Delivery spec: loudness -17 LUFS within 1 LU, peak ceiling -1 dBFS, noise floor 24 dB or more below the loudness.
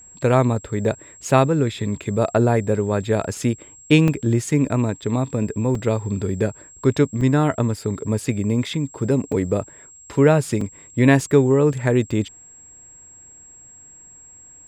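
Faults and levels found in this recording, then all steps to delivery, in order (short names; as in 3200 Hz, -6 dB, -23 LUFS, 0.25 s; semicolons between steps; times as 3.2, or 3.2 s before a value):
dropouts 8; longest dropout 3.4 ms; steady tone 7600 Hz; tone level -43 dBFS; loudness -20.5 LUFS; peak -2.0 dBFS; loudness target -17.0 LUFS
-> interpolate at 4.08/5.02/5.75/7.21/8.66/9.32/10.61/12.11, 3.4 ms; notch 7600 Hz, Q 30; gain +3.5 dB; limiter -1 dBFS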